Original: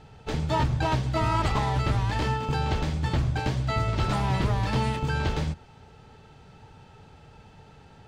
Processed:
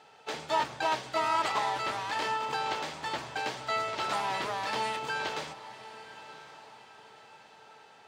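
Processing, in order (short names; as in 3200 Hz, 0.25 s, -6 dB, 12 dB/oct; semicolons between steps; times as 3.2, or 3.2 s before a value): HPF 560 Hz 12 dB/oct; on a send: diffused feedback echo 1.046 s, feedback 41%, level -15 dB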